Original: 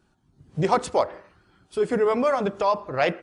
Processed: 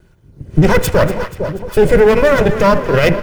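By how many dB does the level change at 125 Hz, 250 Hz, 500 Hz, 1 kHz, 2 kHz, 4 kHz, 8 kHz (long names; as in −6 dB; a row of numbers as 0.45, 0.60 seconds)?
+18.0, +13.0, +11.5, +6.0, +14.0, +11.5, +12.5 decibels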